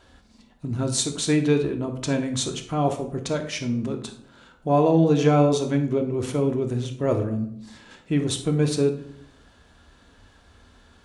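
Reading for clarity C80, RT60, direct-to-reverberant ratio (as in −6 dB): 13.0 dB, 0.65 s, 4.0 dB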